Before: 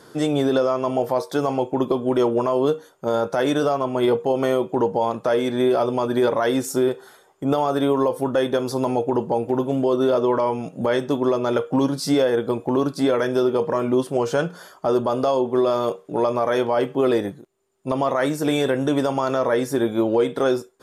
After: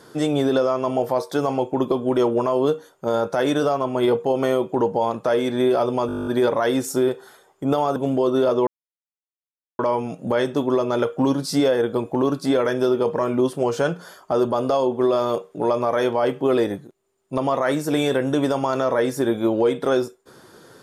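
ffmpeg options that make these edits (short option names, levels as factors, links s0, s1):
-filter_complex "[0:a]asplit=13[s0][s1][s2][s3][s4][s5][s6][s7][s8][s9][s10][s11][s12];[s0]atrim=end=6.092[s13];[s1]atrim=start=6.068:end=6.092[s14];[s2]atrim=start=6.068:end=6.092[s15];[s3]atrim=start=6.068:end=6.092[s16];[s4]atrim=start=6.068:end=6.092[s17];[s5]atrim=start=6.068:end=6.092[s18];[s6]atrim=start=6.068:end=6.092[s19];[s7]atrim=start=6.068:end=6.092[s20];[s8]atrim=start=6.068:end=6.092[s21];[s9]atrim=start=6.068:end=6.092[s22];[s10]atrim=start=6.068:end=7.762[s23];[s11]atrim=start=9.618:end=10.33,asetpts=PTS-STARTPTS,afade=t=out:st=0.708:d=0.004:c=hsin,apad=pad_dur=1.12[s24];[s12]atrim=start=10.33,asetpts=PTS-STARTPTS,afade=t=in:d=0.004:c=hsin[s25];[s13][s14]acrossfade=d=0.004:c1=hsin:c2=hsin[s26];[s26][s15]acrossfade=d=0.004:c1=hsin:c2=hsin[s27];[s27][s16]acrossfade=d=0.004:c1=hsin:c2=hsin[s28];[s28][s17]acrossfade=d=0.004:c1=hsin:c2=hsin[s29];[s29][s18]acrossfade=d=0.004:c1=hsin:c2=hsin[s30];[s30][s19]acrossfade=d=0.004:c1=hsin:c2=hsin[s31];[s31][s20]acrossfade=d=0.004:c1=hsin:c2=hsin[s32];[s32][s21]acrossfade=d=0.004:c1=hsin:c2=hsin[s33];[s33][s22]acrossfade=d=0.004:c1=hsin:c2=hsin[s34];[s34][s23]acrossfade=d=0.004:c1=hsin:c2=hsin[s35];[s24][s25]concat=n=2:v=0:a=1[s36];[s35][s36]acrossfade=d=0.004:c1=hsin:c2=hsin"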